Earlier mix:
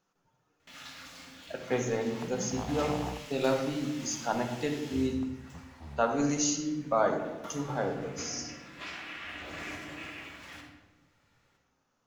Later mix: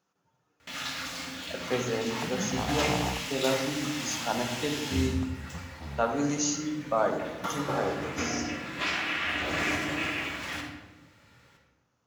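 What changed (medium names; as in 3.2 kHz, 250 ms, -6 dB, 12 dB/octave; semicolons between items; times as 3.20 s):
first sound +11.5 dB; second sound +5.5 dB; master: add high-pass 54 Hz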